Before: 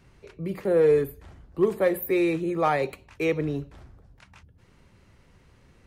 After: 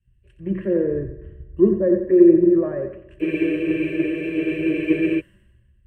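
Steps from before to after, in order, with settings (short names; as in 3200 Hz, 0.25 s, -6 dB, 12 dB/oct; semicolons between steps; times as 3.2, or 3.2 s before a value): treble ducked by the level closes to 640 Hz, closed at -22.5 dBFS; ripple EQ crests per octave 1.3, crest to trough 14 dB; in parallel at +2 dB: limiter -20.5 dBFS, peak gain reduction 12 dB; on the sum: fixed phaser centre 2100 Hz, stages 4; thinning echo 90 ms, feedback 49%, high-pass 330 Hz, level -7 dB; on a send at -13 dB: reverb RT60 3.0 s, pre-delay 3 ms; on the sum: spectral freeze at 3.23, 1.95 s; three-band expander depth 100%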